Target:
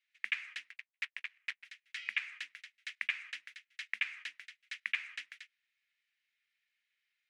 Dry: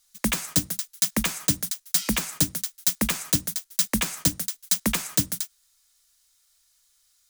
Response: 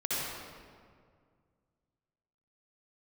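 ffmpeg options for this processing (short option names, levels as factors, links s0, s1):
-filter_complex "[0:a]asplit=3[s0][s1][s2];[s0]afade=t=out:st=0.7:d=0.02[s3];[s1]aeval=exprs='0.501*(cos(1*acos(clip(val(0)/0.501,-1,1)))-cos(1*PI/2))+0.251*(cos(2*acos(clip(val(0)/0.501,-1,1)))-cos(2*PI/2))+0.0891*(cos(3*acos(clip(val(0)/0.501,-1,1)))-cos(3*PI/2))+0.0178*(cos(5*acos(clip(val(0)/0.501,-1,1)))-cos(5*PI/2))+0.0501*(cos(7*acos(clip(val(0)/0.501,-1,1)))-cos(7*PI/2))':c=same,afade=t=in:st=0.7:d=0.02,afade=t=out:st=1.64:d=0.02[s4];[s2]afade=t=in:st=1.64:d=0.02[s5];[s3][s4][s5]amix=inputs=3:normalize=0,asuperpass=centerf=2200:order=4:qfactor=2.4"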